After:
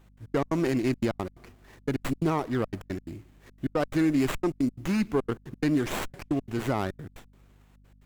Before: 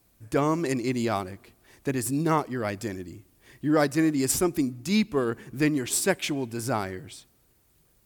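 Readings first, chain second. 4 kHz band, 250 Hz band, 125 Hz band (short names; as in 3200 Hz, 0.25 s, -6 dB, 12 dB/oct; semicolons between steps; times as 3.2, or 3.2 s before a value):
-6.0 dB, -1.0 dB, -0.5 dB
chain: limiter -19.5 dBFS, peak gain reduction 8.5 dB; step gate "x.x.x.xxxx" 176 bpm -60 dB; hum 50 Hz, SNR 28 dB; running maximum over 9 samples; gain +3 dB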